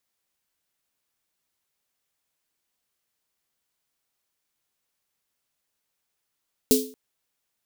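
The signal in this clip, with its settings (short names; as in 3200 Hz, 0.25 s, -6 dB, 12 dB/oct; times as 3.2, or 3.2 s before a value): snare drum length 0.23 s, tones 260 Hz, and 430 Hz, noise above 3500 Hz, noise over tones -3 dB, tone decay 0.40 s, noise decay 0.34 s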